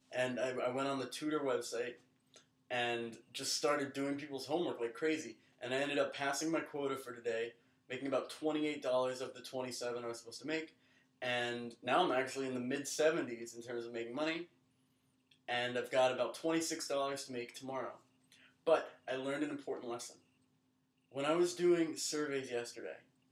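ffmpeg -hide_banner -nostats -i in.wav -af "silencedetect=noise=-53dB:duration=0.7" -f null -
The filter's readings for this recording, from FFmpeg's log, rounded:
silence_start: 14.45
silence_end: 15.32 | silence_duration: 0.87
silence_start: 20.16
silence_end: 21.12 | silence_duration: 0.96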